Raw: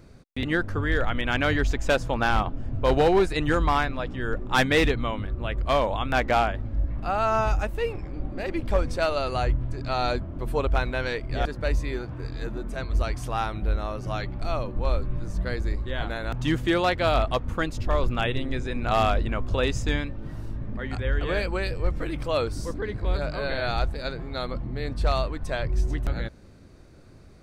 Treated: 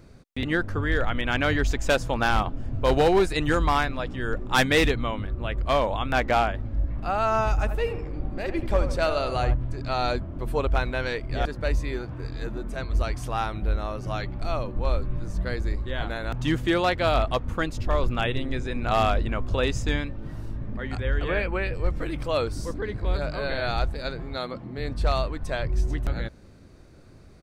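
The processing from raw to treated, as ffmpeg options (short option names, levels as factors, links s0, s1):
-filter_complex "[0:a]asettb=1/sr,asplit=3[s0][s1][s2];[s0]atrim=end=1.644[s3];[s1]atrim=start=1.64:end=4.97,asetpts=PTS-STARTPTS,afade=t=in:d=0.004:c=qsin,afade=t=out:st=3.326:d=0.004:c=qsin,highshelf=f=4800:g=5.5[s4];[s2]atrim=start=4.966[s5];[s3][s4]acrossfade=d=0.004:c1=hsin:c2=qsin[s6];[s6][s5]acrossfade=d=0.004:c1=qsin:c2=hsin,asplit=3[s7][s8][s9];[s7]afade=t=out:st=7.57:d=0.02[s10];[s8]asplit=2[s11][s12];[s12]adelay=81,lowpass=f=1600:p=1,volume=0.376,asplit=2[s13][s14];[s14]adelay=81,lowpass=f=1600:p=1,volume=0.51,asplit=2[s15][s16];[s16]adelay=81,lowpass=f=1600:p=1,volume=0.51,asplit=2[s17][s18];[s18]adelay=81,lowpass=f=1600:p=1,volume=0.51,asplit=2[s19][s20];[s20]adelay=81,lowpass=f=1600:p=1,volume=0.51,asplit=2[s21][s22];[s22]adelay=81,lowpass=f=1600:p=1,volume=0.51[s23];[s11][s13][s15][s17][s19][s21][s23]amix=inputs=7:normalize=0,afade=t=in:st=7.57:d=0.02,afade=t=out:st=9.53:d=0.02[s24];[s9]afade=t=in:st=9.53:d=0.02[s25];[s10][s24][s25]amix=inputs=3:normalize=0,asettb=1/sr,asplit=3[s26][s27][s28];[s26]atrim=end=21.284[s29];[s27]atrim=start=21.28:end=21.74,asetpts=PTS-STARTPTS,afade=t=in:d=0.004:c=qsin,afade=t=out:st=0.456:d=0.004:c=qsin,highshelf=f=3600:t=q:w=1.5:g=-11[s30];[s28]atrim=start=21.736[s31];[s29][s30]acrossfade=d=0.004:c1=hsin:c2=qsin[s32];[s32][s31]acrossfade=d=0.004:c1=qsin:c2=hsin,asettb=1/sr,asplit=3[s33][s34][s35];[s33]atrim=end=24.374[s36];[s34]atrim=start=24.37:end=24.78,asetpts=PTS-STARTPTS,afade=t=in:d=0.004:c=qsin,afade=t=out:st=0.406:d=0.004:c=qsin,highpass=150[s37];[s35]atrim=start=24.776[s38];[s36][s37]acrossfade=d=0.004:c1=hsin:c2=qsin[s39];[s39][s38]acrossfade=d=0.004:c1=qsin:c2=hsin"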